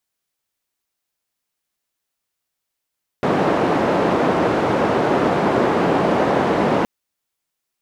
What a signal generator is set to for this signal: noise band 170–670 Hz, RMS -17.5 dBFS 3.62 s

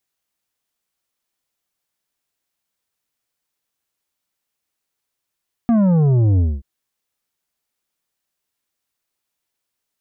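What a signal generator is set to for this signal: sub drop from 240 Hz, over 0.93 s, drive 8.5 dB, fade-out 0.23 s, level -12.5 dB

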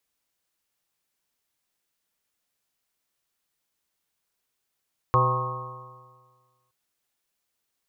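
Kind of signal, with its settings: stretched partials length 1.57 s, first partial 124 Hz, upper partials -19.5/-9.5/-4.5/-15.5/-11/-8/3.5/-7 dB, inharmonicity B 0.0031, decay 1.60 s, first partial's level -21 dB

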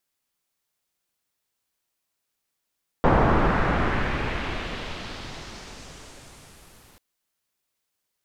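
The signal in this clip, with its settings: swept filtered noise pink, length 3.94 s lowpass, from 1000 Hz, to 14000 Hz, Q 1.3, exponential, gain ramp -39 dB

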